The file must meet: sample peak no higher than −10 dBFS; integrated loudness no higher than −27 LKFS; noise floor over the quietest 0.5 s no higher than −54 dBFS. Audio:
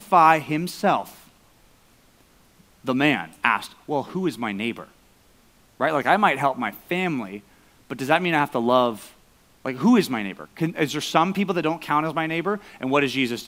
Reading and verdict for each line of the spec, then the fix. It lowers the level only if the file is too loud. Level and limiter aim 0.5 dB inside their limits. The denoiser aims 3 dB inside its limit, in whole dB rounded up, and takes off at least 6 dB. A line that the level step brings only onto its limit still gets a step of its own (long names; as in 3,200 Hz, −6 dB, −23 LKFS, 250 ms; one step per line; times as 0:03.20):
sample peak −2.0 dBFS: out of spec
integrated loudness −22.5 LKFS: out of spec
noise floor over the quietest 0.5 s −56 dBFS: in spec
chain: level −5 dB
brickwall limiter −10.5 dBFS